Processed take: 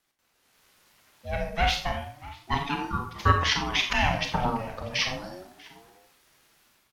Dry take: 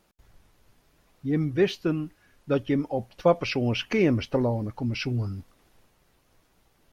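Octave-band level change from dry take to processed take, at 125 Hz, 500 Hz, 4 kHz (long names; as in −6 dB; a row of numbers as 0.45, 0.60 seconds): −3.0, −8.5, +8.0 decibels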